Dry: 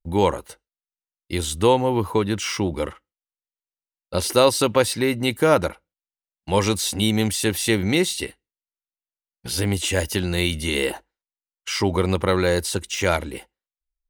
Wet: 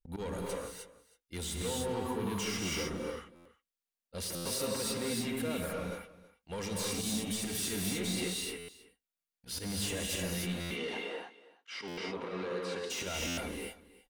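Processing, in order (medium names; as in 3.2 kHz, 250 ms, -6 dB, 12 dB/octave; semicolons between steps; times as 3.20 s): peaking EQ 940 Hz -3 dB; comb 4.3 ms, depth 35%; slow attack 144 ms; peak limiter -17.5 dBFS, peak gain reduction 10.5 dB; compression, threshold -28 dBFS, peak gain reduction 7 dB; saturation -30.5 dBFS, distortion -12 dB; 10.45–12.90 s: band-pass 270–3600 Hz; delay 323 ms -19 dB; gated-style reverb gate 330 ms rising, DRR -2.5 dB; buffer glitch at 3.35/4.35/8.58/10.60/11.87/13.27 s, samples 512, times 8; trim -3.5 dB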